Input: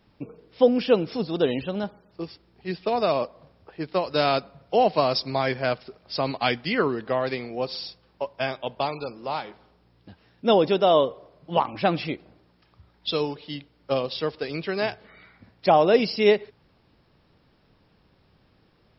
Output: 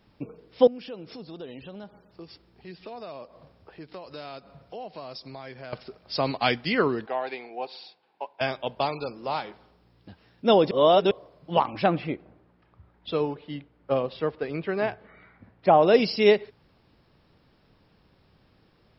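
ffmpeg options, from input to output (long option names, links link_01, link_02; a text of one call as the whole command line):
ffmpeg -i in.wav -filter_complex "[0:a]asettb=1/sr,asplit=3[link_01][link_02][link_03];[link_01]atrim=end=0.674[link_04];[link_02]atrim=start=0.67:end=5.73,asetpts=PTS-STARTPTS,afade=type=in:duration=0.004:curve=qsin,afade=type=out:start_time=5.056:duration=0.004:curve=qsin,acompressor=threshold=-42dB:ratio=3:attack=3.2:release=140:knee=1:detection=peak[link_05];[link_03]atrim=start=5.726[link_06];[link_04][link_05]acrossfade=duration=0.004:curve1=hsin:curve2=qsin[link_07];[link_07][link_06]acrossfade=duration=0.004:curve1=qsin:curve2=hsin,asettb=1/sr,asplit=3[link_08][link_09][link_10];[link_08]atrim=end=7.064[link_11];[link_09]atrim=start=7.06:end=8.41,asetpts=PTS-STARTPTS,afade=type=in:duration=0.004:curve=qsin,afade=type=out:start_time=1.346:duration=0.004:curve=qsin,highpass=500,equalizer=frequency=560:width_type=q:width=4:gain=-9,equalizer=frequency=800:width_type=q:width=4:gain=6,equalizer=frequency=1200:width_type=q:width=4:gain=-10,equalizer=frequency=1900:width_type=q:width=4:gain=-6,equalizer=frequency=3100:width_type=q:width=4:gain=-5,lowpass=frequency=3500:width=0.5412,lowpass=frequency=3500:width=1.3066[link_12];[link_10]atrim=start=8.406[link_13];[link_11][link_12]acrossfade=duration=0.004:curve1=hsin:curve2=qsin[link_14];[link_14][link_13]acrossfade=duration=0.004:curve1=qsin:curve2=hsin,asettb=1/sr,asplit=3[link_15][link_16][link_17];[link_15]atrim=end=11.864[link_18];[link_16]atrim=start=11.86:end=15.83,asetpts=PTS-STARTPTS,afade=type=in:duration=0.004:curve=qsin,afade=type=out:start_time=3.966:duration=0.004:curve=qsin,lowpass=2000[link_19];[link_17]atrim=start=15.826[link_20];[link_18][link_19]acrossfade=duration=0.004:curve1=hsin:curve2=qsin[link_21];[link_21][link_20]acrossfade=duration=0.004:curve1=qsin:curve2=hsin,asplit=3[link_22][link_23][link_24];[link_22]atrim=end=10.712[link_25];[link_23]atrim=start=10.708:end=11.112,asetpts=PTS-STARTPTS,areverse[link_26];[link_24]atrim=start=11.108[link_27];[link_25][link_26]acrossfade=duration=0.004:curve1=hsin:curve2=hsin[link_28];[link_28][link_27]acrossfade=duration=0.004:curve1=hsin:curve2=hsin" out.wav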